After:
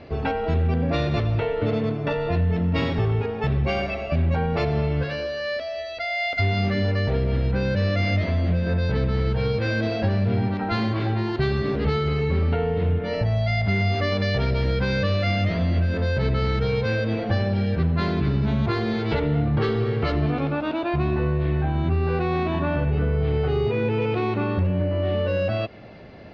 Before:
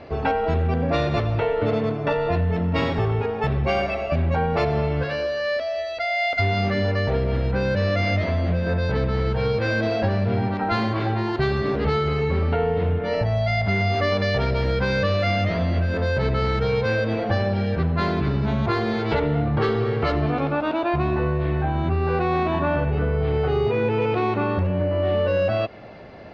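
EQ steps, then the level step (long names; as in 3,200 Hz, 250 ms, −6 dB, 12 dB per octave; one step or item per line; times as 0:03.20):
high-frequency loss of the air 84 metres
low-shelf EQ 150 Hz −3.5 dB
parametric band 890 Hz −8.5 dB 2.8 octaves
+4.0 dB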